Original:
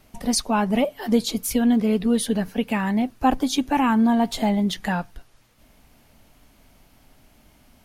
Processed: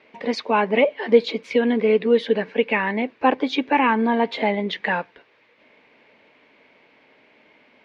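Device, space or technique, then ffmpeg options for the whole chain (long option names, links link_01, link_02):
phone earpiece: -af "highpass=440,equalizer=frequency=460:width_type=q:width=4:gain=6,equalizer=frequency=730:width_type=q:width=4:gain=-9,equalizer=frequency=1300:width_type=q:width=4:gain=-8,equalizer=frequency=2200:width_type=q:width=4:gain=5,equalizer=frequency=3100:width_type=q:width=4:gain=-4,lowpass=frequency=3200:width=0.5412,lowpass=frequency=3200:width=1.3066,volume=7.5dB"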